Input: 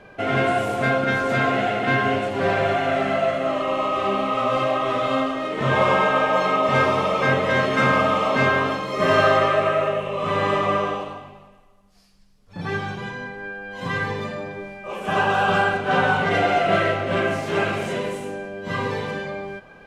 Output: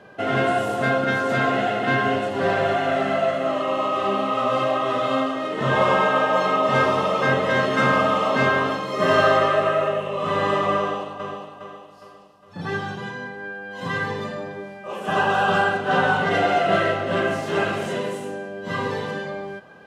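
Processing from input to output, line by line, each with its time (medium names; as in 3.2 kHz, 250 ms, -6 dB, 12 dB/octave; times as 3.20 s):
10.78–11.23 s: echo throw 410 ms, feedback 45%, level -7 dB
whole clip: high-pass 110 Hz; band-stop 2.3 kHz, Q 6.9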